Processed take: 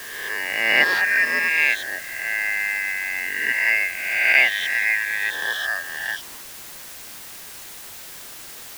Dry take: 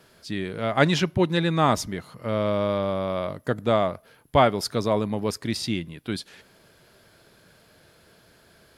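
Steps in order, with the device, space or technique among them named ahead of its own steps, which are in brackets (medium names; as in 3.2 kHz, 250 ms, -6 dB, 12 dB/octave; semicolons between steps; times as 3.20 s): reverse spectral sustain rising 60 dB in 1.37 s; split-band scrambled radio (four frequency bands reordered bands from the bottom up 2143; band-pass 390–3300 Hz; white noise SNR 15 dB)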